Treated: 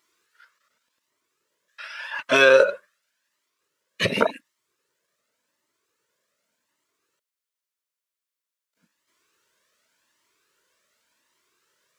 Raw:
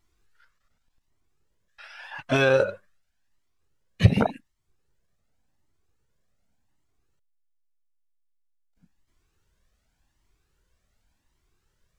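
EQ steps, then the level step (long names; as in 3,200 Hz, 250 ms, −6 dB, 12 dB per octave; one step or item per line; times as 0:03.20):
high-pass filter 470 Hz 12 dB per octave
Butterworth band-reject 770 Hz, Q 3.4
+8.0 dB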